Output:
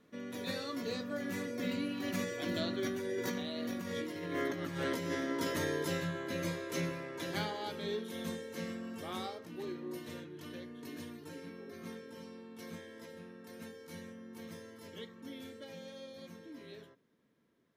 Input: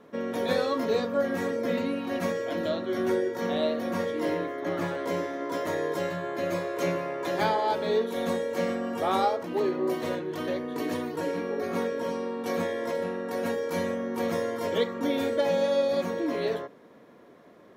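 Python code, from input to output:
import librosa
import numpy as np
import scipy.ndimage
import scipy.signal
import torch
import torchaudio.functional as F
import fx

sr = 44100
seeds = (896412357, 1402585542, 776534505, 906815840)

y = fx.doppler_pass(x, sr, speed_mps=12, closest_m=8.6, pass_at_s=4.25)
y = fx.peak_eq(y, sr, hz=700.0, db=-14.0, octaves=2.2)
y = fx.over_compress(y, sr, threshold_db=-44.0, ratio=-1.0)
y = y * librosa.db_to_amplitude(8.5)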